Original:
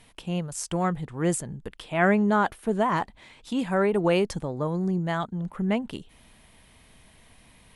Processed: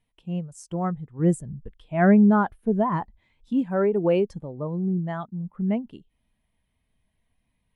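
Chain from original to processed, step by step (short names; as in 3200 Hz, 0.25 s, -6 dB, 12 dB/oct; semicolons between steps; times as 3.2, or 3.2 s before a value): 1.19–3.62 low shelf 140 Hz +9 dB; spectral expander 1.5:1; gain +1.5 dB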